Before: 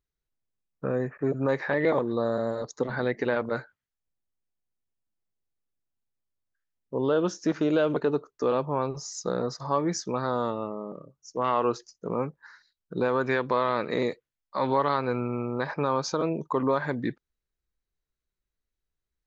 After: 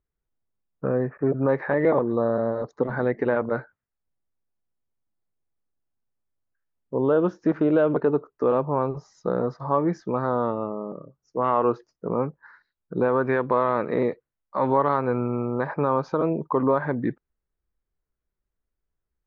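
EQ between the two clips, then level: LPF 1500 Hz 12 dB/oct; +4.0 dB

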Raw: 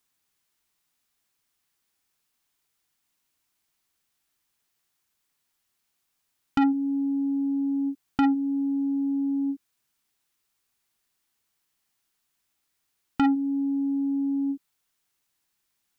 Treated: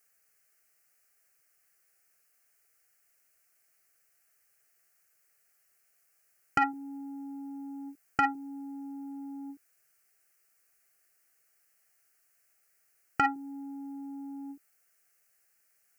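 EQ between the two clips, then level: HPF 250 Hz 6 dB/oct; fixed phaser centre 970 Hz, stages 6; +7.5 dB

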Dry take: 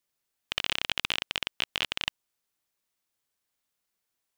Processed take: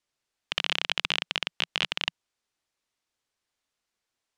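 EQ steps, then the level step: LPF 7000 Hz 12 dB/oct; bell 170 Hz -6 dB 0.31 oct; +2.0 dB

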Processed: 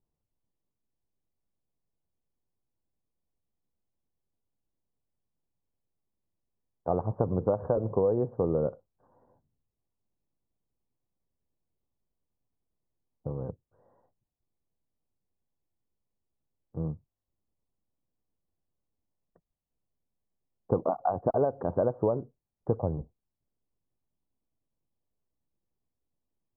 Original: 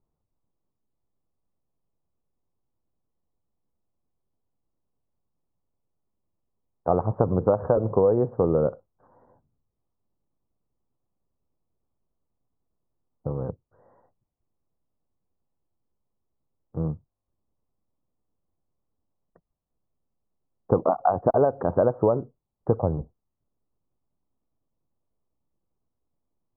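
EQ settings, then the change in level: tilt shelf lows +3.5 dB, about 1400 Hz; notch 1300 Hz, Q 18; -8.5 dB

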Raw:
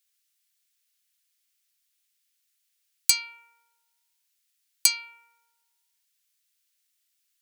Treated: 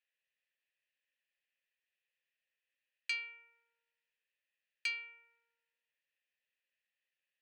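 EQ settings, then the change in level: vowel filter e; tone controls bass -15 dB, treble -12 dB; high shelf 9500 Hz -11 dB; +10.5 dB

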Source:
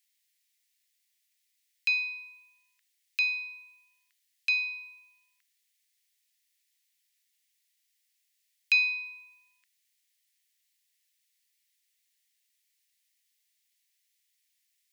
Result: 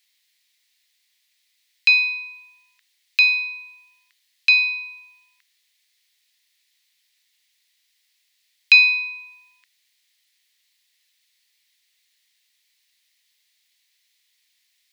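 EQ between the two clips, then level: ten-band EQ 1000 Hz +8 dB, 2000 Hz +5 dB, 4000 Hz +9 dB; +4.0 dB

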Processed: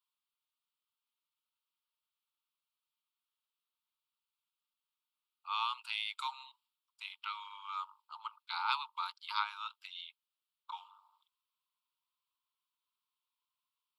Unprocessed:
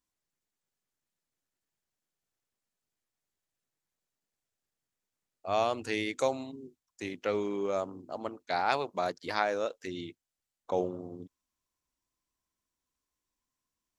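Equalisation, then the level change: rippled Chebyshev high-pass 880 Hz, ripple 6 dB; fixed phaser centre 1800 Hz, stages 6; +3.5 dB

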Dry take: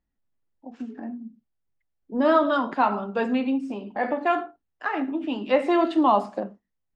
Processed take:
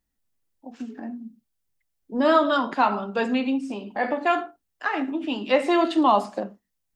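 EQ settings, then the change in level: high shelf 3300 Hz +11.5 dB; 0.0 dB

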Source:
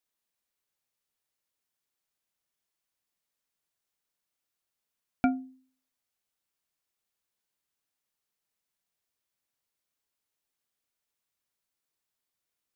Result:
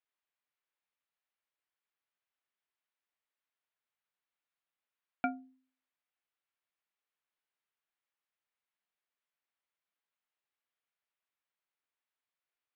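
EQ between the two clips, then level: HPF 1500 Hz 6 dB/oct; air absorption 440 m; +4.5 dB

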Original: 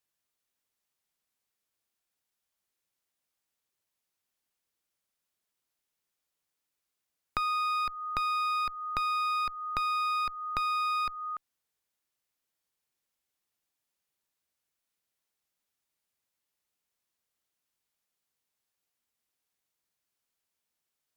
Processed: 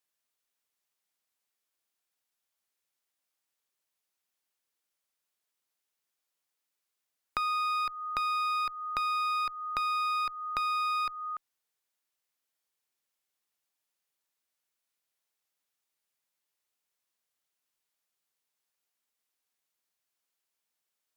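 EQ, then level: low shelf 240 Hz -10 dB; 0.0 dB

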